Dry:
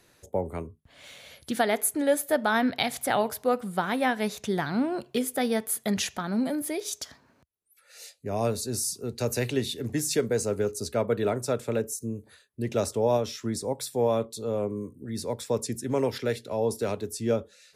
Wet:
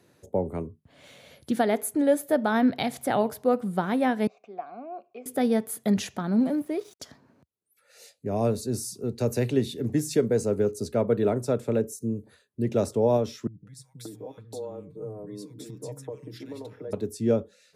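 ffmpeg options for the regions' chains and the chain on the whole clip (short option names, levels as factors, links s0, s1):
-filter_complex "[0:a]asettb=1/sr,asplit=3[s0][s1][s2];[s0]atrim=end=4.274[s3];[s1]atrim=start=4.27:end=5.26,asetpts=PTS-STARTPTS,afade=t=in:d=0.004:c=qsin,afade=t=out:st=0.986:d=0.004:c=qsin,asplit=3[s4][s5][s6];[s4]bandpass=f=730:t=q:w=8,volume=1[s7];[s5]bandpass=f=1090:t=q:w=8,volume=0.501[s8];[s6]bandpass=f=2440:t=q:w=8,volume=0.355[s9];[s7][s8][s9]amix=inputs=3:normalize=0,highpass=120,equalizer=f=150:t=q:w=4:g=-10,equalizer=f=2100:t=q:w=4:g=9,equalizer=f=3400:t=q:w=4:g=-9,lowpass=f=7500:w=0.5412,lowpass=f=7500:w=1.3066[s10];[s2]atrim=start=5.256[s11];[s3][s10]acrossfade=d=0.004:c1=hsin:c2=qsin[s12];[s12][s11]acrossfade=d=0.004:c1=qsin:c2=hsin,asettb=1/sr,asplit=3[s13][s14][s15];[s13]atrim=end=6.404[s16];[s14]atrim=start=6.4:end=7,asetpts=PTS-STARTPTS,afade=t=in:d=0.004:c=qsin,afade=t=out:st=0.596:d=0.004:c=qsin,acrossover=split=2700[s17][s18];[s18]acompressor=threshold=0.00631:ratio=4:attack=1:release=60[s19];[s17][s19]amix=inputs=2:normalize=0,aeval=exprs='sgn(val(0))*max(abs(val(0))-0.00376,0)':c=same[s20];[s15]atrim=start=6.996[s21];[s16][s20]acrossfade=d=0.004:c1=hsin:c2=qsin[s22];[s22][s21]acrossfade=d=0.004:c1=qsin:c2=hsin,asettb=1/sr,asplit=3[s23][s24][s25];[s23]atrim=end=13.474[s26];[s24]atrim=start=13.47:end=16.93,asetpts=PTS-STARTPTS,afade=t=in:d=0.004:c=qsin,afade=t=out:st=3.456:d=0.004:c=qsin,acompressor=threshold=0.0126:ratio=6:attack=3.2:release=140:knee=1:detection=peak,aecho=1:1:6.5:0.74,atrim=end_sample=152586,acrossover=split=200|1600[s27][s28][s29];[s29]adelay=200[s30];[s28]adelay=580[s31];[s27][s31][s30]amix=inputs=3:normalize=0,atrim=end_sample=152586[s32];[s25]atrim=start=16.926[s33];[s26][s32]acrossfade=d=0.004:c1=hsin:c2=qsin[s34];[s34][s33]acrossfade=d=0.004:c1=qsin:c2=hsin,highpass=110,tiltshelf=f=730:g=6"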